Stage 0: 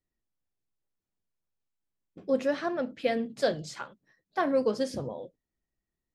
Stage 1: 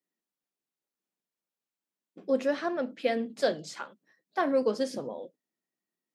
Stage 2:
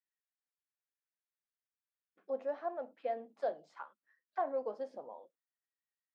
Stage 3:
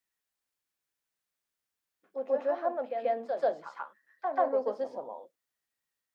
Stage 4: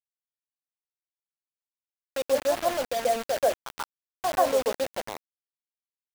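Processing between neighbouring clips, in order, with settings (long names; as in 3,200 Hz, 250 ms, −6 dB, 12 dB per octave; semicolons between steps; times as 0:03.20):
high-pass filter 190 Hz 24 dB per octave
envelope filter 750–1,700 Hz, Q 2.8, down, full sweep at −30 dBFS; level −3 dB
backwards echo 137 ms −5.5 dB; level +7 dB
bit reduction 6 bits; level +4.5 dB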